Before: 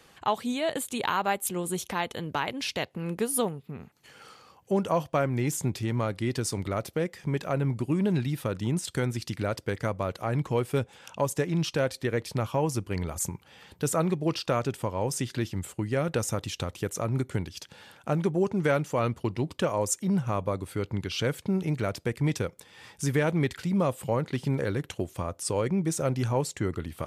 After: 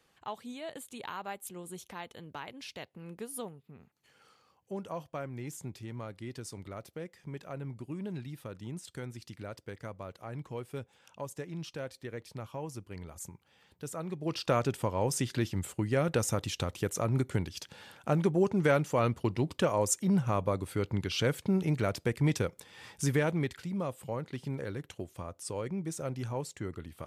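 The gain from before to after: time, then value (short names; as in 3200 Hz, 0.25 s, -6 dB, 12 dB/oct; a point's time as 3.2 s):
14.03 s -13 dB
14.5 s -1 dB
23.02 s -1 dB
23.72 s -9 dB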